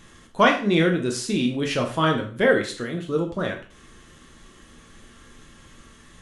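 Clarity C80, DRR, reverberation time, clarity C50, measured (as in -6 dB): 13.5 dB, 2.0 dB, 0.40 s, 9.0 dB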